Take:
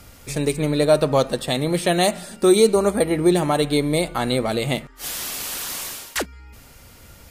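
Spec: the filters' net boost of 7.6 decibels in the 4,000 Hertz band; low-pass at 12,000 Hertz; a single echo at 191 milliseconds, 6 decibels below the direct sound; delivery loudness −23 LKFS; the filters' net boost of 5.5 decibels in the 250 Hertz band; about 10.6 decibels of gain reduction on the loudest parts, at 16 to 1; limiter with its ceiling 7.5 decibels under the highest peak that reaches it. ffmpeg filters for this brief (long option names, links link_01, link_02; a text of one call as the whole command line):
ffmpeg -i in.wav -af "lowpass=12000,equalizer=frequency=250:width_type=o:gain=8,equalizer=frequency=4000:width_type=o:gain=8.5,acompressor=threshold=-17dB:ratio=16,alimiter=limit=-14dB:level=0:latency=1,aecho=1:1:191:0.501,volume=1dB" out.wav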